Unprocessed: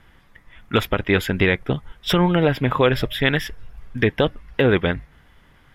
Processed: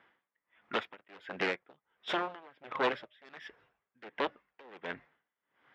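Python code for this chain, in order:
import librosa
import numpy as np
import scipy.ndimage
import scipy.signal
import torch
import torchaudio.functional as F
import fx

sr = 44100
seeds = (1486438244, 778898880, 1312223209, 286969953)

y = np.minimum(x, 2.0 * 10.0 ** (-20.0 / 20.0) - x)
y = fx.bandpass_edges(y, sr, low_hz=380.0, high_hz=2700.0)
y = y * 10.0 ** (-26 * (0.5 - 0.5 * np.cos(2.0 * np.pi * 1.4 * np.arange(len(y)) / sr)) / 20.0)
y = y * 10.0 ** (-6.5 / 20.0)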